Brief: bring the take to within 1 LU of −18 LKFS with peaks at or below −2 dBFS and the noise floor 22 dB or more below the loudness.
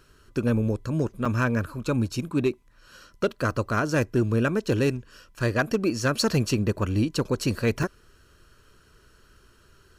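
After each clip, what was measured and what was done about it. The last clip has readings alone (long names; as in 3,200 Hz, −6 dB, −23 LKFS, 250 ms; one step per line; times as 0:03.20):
share of clipped samples 0.4%; peaks flattened at −15.0 dBFS; number of dropouts 2; longest dropout 4.7 ms; integrated loudness −26.0 LKFS; sample peak −15.0 dBFS; target loudness −18.0 LKFS
→ clipped peaks rebuilt −15 dBFS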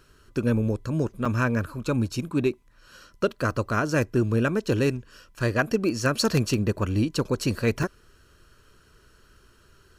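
share of clipped samples 0.0%; number of dropouts 2; longest dropout 4.7 ms
→ repair the gap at 0:01.25/0:07.83, 4.7 ms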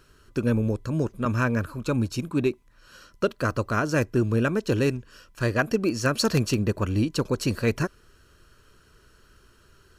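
number of dropouts 0; integrated loudness −26.0 LKFS; sample peak −6.0 dBFS; target loudness −18.0 LKFS
→ level +8 dB
brickwall limiter −2 dBFS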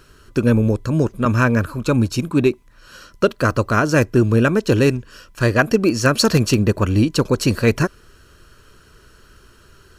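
integrated loudness −18.0 LKFS; sample peak −2.0 dBFS; background noise floor −50 dBFS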